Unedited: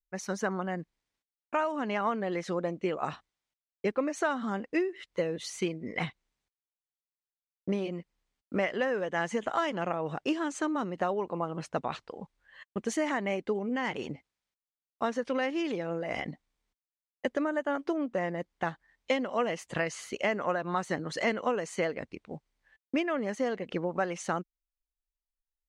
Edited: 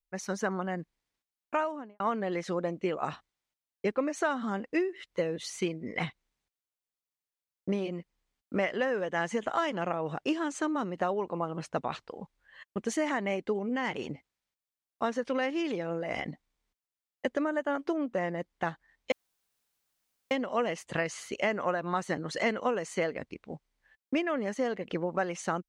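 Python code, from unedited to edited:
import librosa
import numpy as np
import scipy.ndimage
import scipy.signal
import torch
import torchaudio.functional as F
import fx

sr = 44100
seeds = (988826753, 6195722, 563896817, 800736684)

y = fx.studio_fade_out(x, sr, start_s=1.55, length_s=0.45)
y = fx.edit(y, sr, fx.insert_room_tone(at_s=19.12, length_s=1.19), tone=tone)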